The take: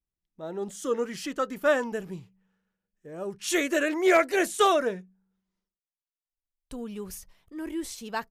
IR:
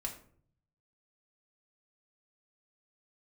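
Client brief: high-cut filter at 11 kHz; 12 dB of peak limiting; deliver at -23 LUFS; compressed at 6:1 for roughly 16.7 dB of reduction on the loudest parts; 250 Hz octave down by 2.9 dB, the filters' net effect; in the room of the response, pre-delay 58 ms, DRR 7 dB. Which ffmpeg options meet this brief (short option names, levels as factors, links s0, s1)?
-filter_complex "[0:a]lowpass=11000,equalizer=f=250:t=o:g=-4.5,acompressor=threshold=0.0158:ratio=6,alimiter=level_in=3.76:limit=0.0631:level=0:latency=1,volume=0.266,asplit=2[s0][s1];[1:a]atrim=start_sample=2205,adelay=58[s2];[s1][s2]afir=irnorm=-1:irlink=0,volume=0.447[s3];[s0][s3]amix=inputs=2:normalize=0,volume=10.6"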